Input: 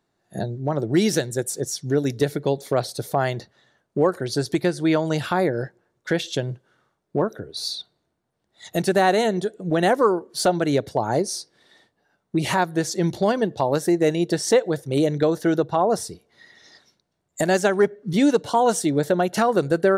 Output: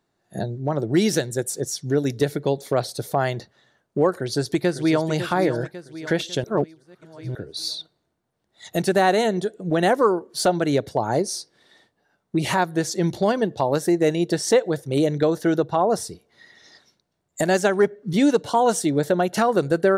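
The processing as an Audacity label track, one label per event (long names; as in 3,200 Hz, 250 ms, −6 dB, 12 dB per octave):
4.110000	5.110000	delay throw 550 ms, feedback 50%, level −10 dB
6.440000	7.350000	reverse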